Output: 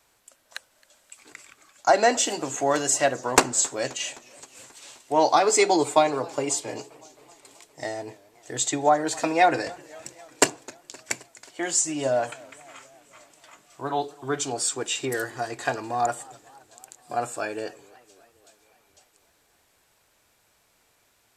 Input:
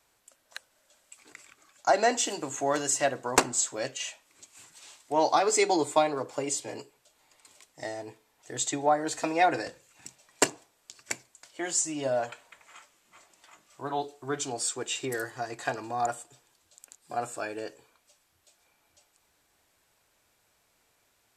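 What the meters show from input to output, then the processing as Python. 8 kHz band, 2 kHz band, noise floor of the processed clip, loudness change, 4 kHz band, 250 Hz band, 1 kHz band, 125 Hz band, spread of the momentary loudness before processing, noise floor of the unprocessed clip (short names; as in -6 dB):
+4.5 dB, +4.5 dB, -65 dBFS, +4.5 dB, +4.5 dB, +4.5 dB, +4.5 dB, +4.5 dB, 16 LU, -70 dBFS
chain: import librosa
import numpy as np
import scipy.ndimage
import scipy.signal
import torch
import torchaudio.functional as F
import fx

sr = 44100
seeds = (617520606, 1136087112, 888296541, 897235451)

y = fx.echo_warbled(x, sr, ms=263, feedback_pct=65, rate_hz=2.8, cents=173, wet_db=-23.5)
y = y * 10.0 ** (4.5 / 20.0)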